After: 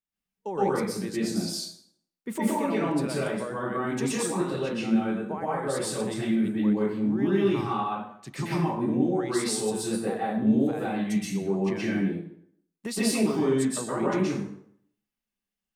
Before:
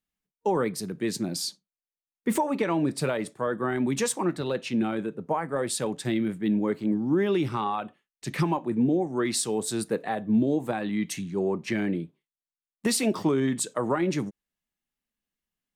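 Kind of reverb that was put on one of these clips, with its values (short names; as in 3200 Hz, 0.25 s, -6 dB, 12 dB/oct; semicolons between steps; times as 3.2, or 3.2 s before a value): plate-style reverb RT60 0.66 s, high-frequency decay 0.75×, pre-delay 0.11 s, DRR -8 dB; gain -9 dB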